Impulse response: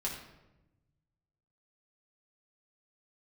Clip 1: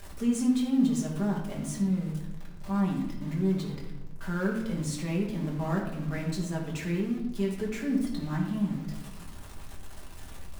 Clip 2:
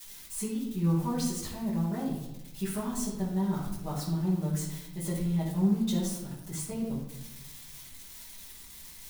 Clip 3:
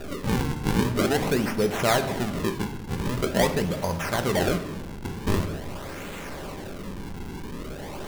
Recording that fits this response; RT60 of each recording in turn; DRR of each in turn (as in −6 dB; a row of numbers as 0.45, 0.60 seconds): 1; 1.0, 1.0, 1.0 seconds; −3.5, −10.5, 6.0 decibels